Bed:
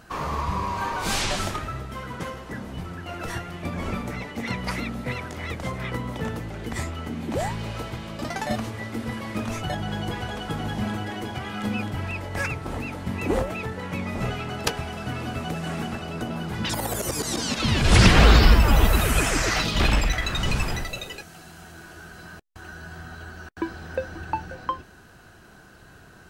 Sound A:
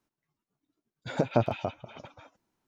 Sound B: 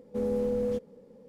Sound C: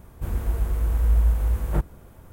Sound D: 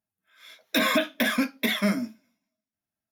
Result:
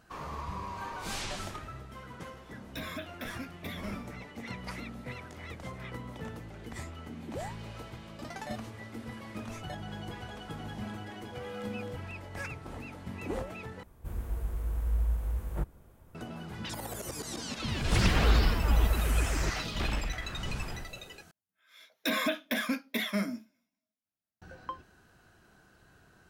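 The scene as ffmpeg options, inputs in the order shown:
ffmpeg -i bed.wav -i cue0.wav -i cue1.wav -i cue2.wav -i cue3.wav -filter_complex "[4:a]asplit=2[link_01][link_02];[3:a]asplit=2[link_03][link_04];[0:a]volume=-11.5dB[link_05];[2:a]highpass=frequency=550:width=0.5412,highpass=frequency=550:width=1.3066[link_06];[link_04]alimiter=limit=-20.5dB:level=0:latency=1:release=71[link_07];[link_05]asplit=3[link_08][link_09][link_10];[link_08]atrim=end=13.834[link_11];[link_03]atrim=end=2.32,asetpts=PTS-STARTPTS,volume=-10dB[link_12];[link_09]atrim=start=16.146:end=21.314[link_13];[link_02]atrim=end=3.11,asetpts=PTS-STARTPTS,volume=-7dB[link_14];[link_10]atrim=start=24.416[link_15];[link_01]atrim=end=3.11,asetpts=PTS-STARTPTS,volume=-17.5dB,afade=type=in:duration=0.004:curve=hsin,afade=type=out:start_time=3.106:duration=0.004:curve=hsin,adelay=2010[link_16];[link_06]atrim=end=1.28,asetpts=PTS-STARTPTS,volume=-7.5dB,afade=type=in:duration=0.004:curve=hsin,afade=type=out:start_time=1.276:duration=0.004:curve=hsin,adelay=11180[link_17];[link_07]atrim=end=2.32,asetpts=PTS-STARTPTS,volume=-3dB,afade=type=in:duration=0.004:curve=hsin,afade=type=out:start_time=2.316:duration=0.004:curve=hsin,adelay=17690[link_18];[link_11][link_12]acrossfade=duration=0.004:curve1=hsin:curve2=hsin[link_19];[link_19][link_13]acrossfade=duration=0.004:curve1=hsin:curve2=hsin[link_20];[link_20][link_14]acrossfade=duration=0.004:curve1=hsin:curve2=hsin[link_21];[link_21][link_15]acrossfade=duration=0.004:curve1=hsin:curve2=hsin[link_22];[link_22][link_16][link_17][link_18]amix=inputs=4:normalize=0" out.wav

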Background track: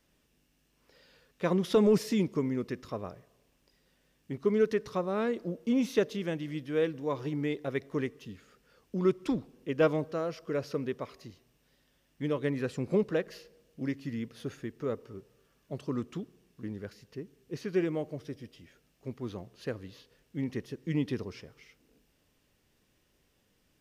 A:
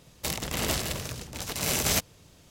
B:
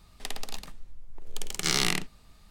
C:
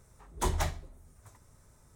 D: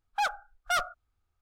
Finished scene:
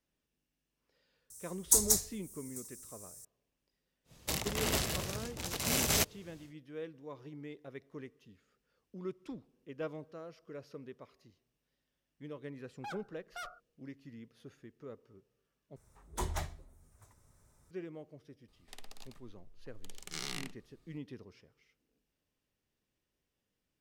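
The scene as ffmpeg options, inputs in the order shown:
ffmpeg -i bed.wav -i cue0.wav -i cue1.wav -i cue2.wav -i cue3.wav -filter_complex "[3:a]asplit=2[link_01][link_02];[0:a]volume=-14.5dB[link_03];[link_01]aexciter=amount=12.5:drive=9.6:freq=4600[link_04];[4:a]acompressor=threshold=-28dB:ratio=6:attack=3.2:release=140:knee=1:detection=peak[link_05];[link_02]highshelf=frequency=9000:gain=2.5[link_06];[link_03]asplit=2[link_07][link_08];[link_07]atrim=end=15.764[link_09];[link_06]atrim=end=1.95,asetpts=PTS-STARTPTS,volume=-6.5dB[link_10];[link_08]atrim=start=17.706[link_11];[link_04]atrim=end=1.95,asetpts=PTS-STARTPTS,volume=-13dB,afade=type=in:duration=0.004:curve=hsin,afade=type=out:start_time=1.946:duration=0.004:curve=hsin,adelay=1300[link_12];[1:a]atrim=end=2.5,asetpts=PTS-STARTPTS,volume=-4dB,afade=type=in:duration=0.1,afade=type=out:start_time=2.4:duration=0.1,adelay=4040[link_13];[link_05]atrim=end=1.41,asetpts=PTS-STARTPTS,volume=-13dB,afade=type=in:duration=0.004:curve=hsin,afade=type=out:start_time=1.406:duration=0.004:curve=hsin,adelay=12660[link_14];[2:a]atrim=end=2.5,asetpts=PTS-STARTPTS,volume=-15dB,afade=type=in:duration=0.004:curve=hsin,afade=type=out:start_time=2.496:duration=0.004:curve=hsin,adelay=18480[link_15];[link_09][link_10]acrossfade=duration=0.004:curve1=hsin:curve2=hsin[link_16];[link_16][link_11]acrossfade=duration=0.004:curve1=hsin:curve2=hsin[link_17];[link_17][link_12][link_13][link_14][link_15]amix=inputs=5:normalize=0" out.wav

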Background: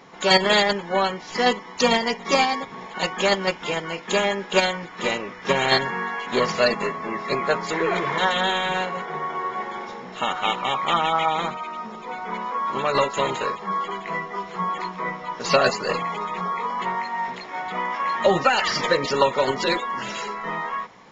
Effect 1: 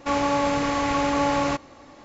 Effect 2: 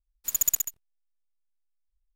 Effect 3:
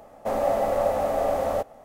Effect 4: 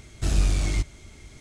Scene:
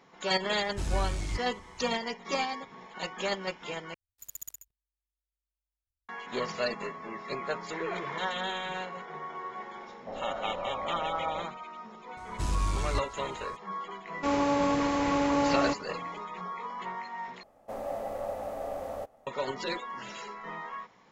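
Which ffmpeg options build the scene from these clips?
ffmpeg -i bed.wav -i cue0.wav -i cue1.wav -i cue2.wav -i cue3.wav -filter_complex "[4:a]asplit=2[link_01][link_02];[3:a]asplit=2[link_03][link_04];[0:a]volume=-11.5dB[link_05];[2:a]aeval=exprs='val(0)*sin(2*PI*50*n/s)':channel_layout=same[link_06];[link_03]lowpass=1100[link_07];[link_02]alimiter=limit=-12dB:level=0:latency=1:release=71[link_08];[1:a]equalizer=frequency=350:width=1:gain=5.5[link_09];[link_05]asplit=3[link_10][link_11][link_12];[link_10]atrim=end=3.944[link_13];[link_06]atrim=end=2.15,asetpts=PTS-STARTPTS,volume=-15.5dB[link_14];[link_11]atrim=start=6.086:end=17.434[link_15];[link_04]atrim=end=1.84,asetpts=PTS-STARTPTS,volume=-12dB[link_16];[link_12]atrim=start=19.266[link_17];[link_01]atrim=end=1.4,asetpts=PTS-STARTPTS,volume=-9dB,afade=type=in:duration=0.004:curve=hsin,afade=type=out:start_time=1.396:duration=0.004:curve=hsin,adelay=550[link_18];[link_07]atrim=end=1.84,asetpts=PTS-STARTPTS,volume=-13.5dB,afade=type=in:duration=0.004:curve=hsin,afade=type=out:start_time=1.836:duration=0.004:curve=hsin,adelay=9810[link_19];[link_08]atrim=end=1.4,asetpts=PTS-STARTPTS,volume=-7dB,afade=type=in:duration=0.004:curve=hsin,afade=type=out:start_time=1.396:duration=0.004:curve=hsin,adelay=12170[link_20];[link_09]atrim=end=2.04,asetpts=PTS-STARTPTS,volume=-6.5dB,afade=type=in:duration=0.004:curve=hsin,afade=type=out:start_time=2.036:duration=0.004:curve=hsin,adelay=14170[link_21];[link_13][link_14]acrossfade=duration=0.004:curve1=hsin:curve2=hsin[link_22];[link_22][link_15]acrossfade=duration=0.004:curve1=hsin:curve2=hsin[link_23];[link_23][link_16]acrossfade=duration=0.004:curve1=hsin:curve2=hsin[link_24];[link_24][link_17]acrossfade=duration=0.004:curve1=hsin:curve2=hsin[link_25];[link_25][link_18][link_19][link_20][link_21]amix=inputs=5:normalize=0" out.wav

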